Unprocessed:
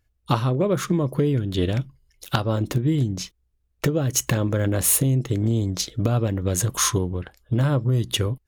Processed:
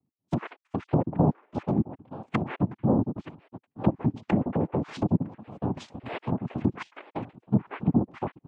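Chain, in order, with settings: random spectral dropouts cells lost 58%; echo 0.923 s -18 dB; low-pass opened by the level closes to 410 Hz, open at -18 dBFS; noise vocoder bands 4; treble ducked by the level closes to 630 Hz, closed at -22 dBFS

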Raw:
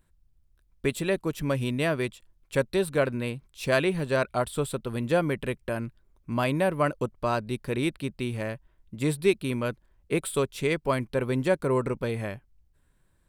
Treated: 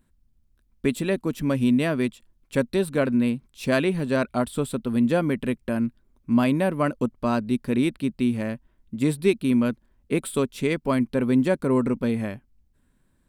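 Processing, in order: bell 240 Hz +13 dB 0.5 oct

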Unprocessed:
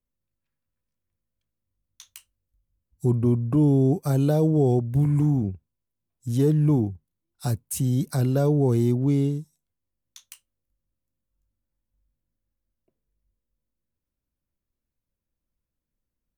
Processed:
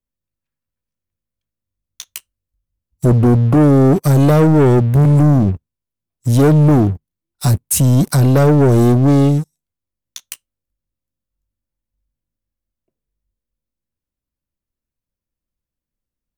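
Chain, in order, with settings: sample leveller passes 3; gain +4.5 dB

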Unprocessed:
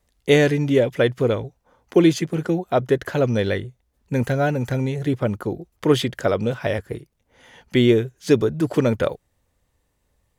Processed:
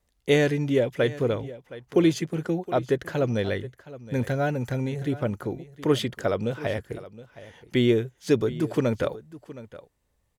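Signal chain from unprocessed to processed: echo 0.718 s -17 dB; gain -5 dB

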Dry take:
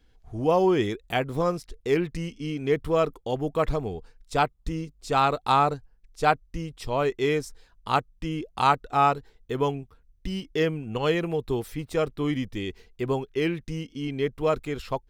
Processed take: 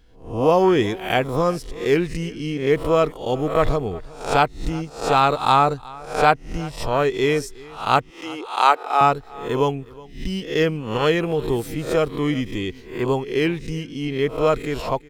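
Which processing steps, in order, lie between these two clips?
spectral swells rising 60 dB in 0.45 s; 8.1–9.01 HPF 360 Hz 24 dB/oct; echo 0.365 s -21.5 dB; gain +4.5 dB

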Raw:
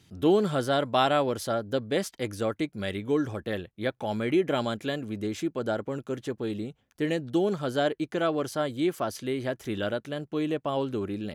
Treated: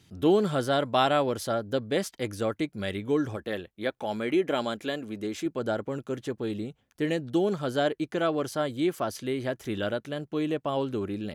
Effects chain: 3.36–5.46 bell 120 Hz -9 dB 1.1 oct

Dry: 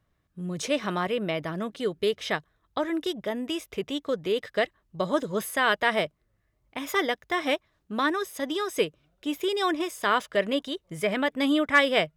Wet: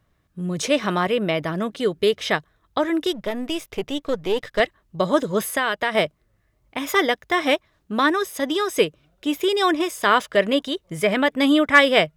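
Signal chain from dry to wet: 3.13–4.6 half-wave gain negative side -7 dB; 5.46–5.95 compressor 6:1, threshold -25 dBFS, peak gain reduction 8 dB; gain +6.5 dB

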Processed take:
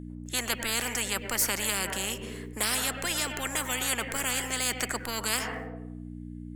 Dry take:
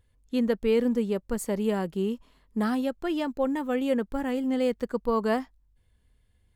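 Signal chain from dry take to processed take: gate with hold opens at -54 dBFS; graphic EQ 125/250/1000/2000/4000/8000 Hz -9/+8/-10/+7/-6/+11 dB; buzz 60 Hz, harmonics 5, -41 dBFS -4 dB/oct; on a send at -16 dB: reverb RT60 0.75 s, pre-delay 95 ms; on the sum: spectral compressor 10:1

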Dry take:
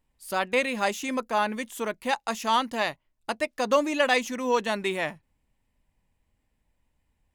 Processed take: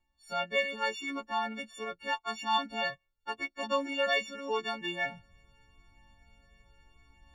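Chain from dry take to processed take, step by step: frequency quantiser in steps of 4 st; reverse; upward compressor, threshold -34 dBFS; reverse; air absorption 170 m; cascading flanger falling 0.84 Hz; gain -3.5 dB

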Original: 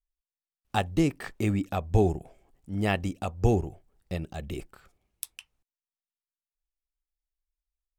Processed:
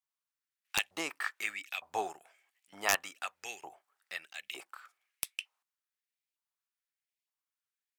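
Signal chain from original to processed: LFO high-pass saw up 1.1 Hz 870–2600 Hz; wrapped overs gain 13.5 dB

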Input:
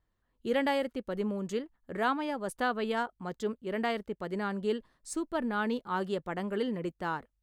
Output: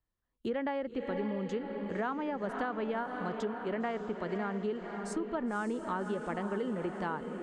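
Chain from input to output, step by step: treble ducked by the level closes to 2000 Hz, closed at -29 dBFS; diffused feedback echo 0.547 s, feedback 53%, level -9 dB; compressor, threshold -30 dBFS, peak gain reduction 6 dB; gate with hold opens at -53 dBFS; three-band squash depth 40%

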